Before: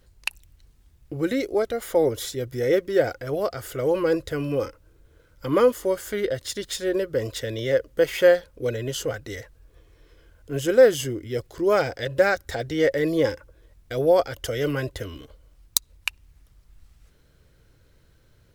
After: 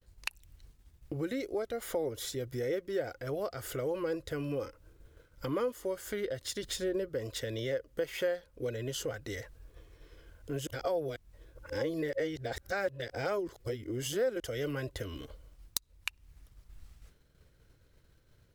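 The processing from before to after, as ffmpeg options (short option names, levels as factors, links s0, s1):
-filter_complex "[0:a]asettb=1/sr,asplit=3[s0][s1][s2];[s0]atrim=end=6.634[s3];[s1]atrim=start=6.63:end=7.09,asetpts=PTS-STARTPTS,afade=t=in:d=0.004:c=qsin,afade=t=out:st=0.456:d=0.004:c=qsin,lowshelf=f=450:g=7.5[s4];[s2]atrim=start=7.086[s5];[s3][s4]acrossfade=d=0.004:c1=hsin:c2=qsin[s6];[s6][s5]acrossfade=d=0.004:c1=qsin:c2=hsin,asplit=3[s7][s8][s9];[s7]atrim=end=10.672[s10];[s8]atrim=start=10.668:end=14.402,asetpts=PTS-STARTPTS,areverse[s11];[s9]atrim=start=14.398[s12];[s10][s11]acrossfade=d=0.004:c1=hsin:c2=hsin[s13];[s13][s12]acrossfade=d=0.004:c1=hsin:c2=hsin,agate=range=0.0224:threshold=0.00282:ratio=3:detection=peak,acompressor=threshold=0.0141:ratio=2.5"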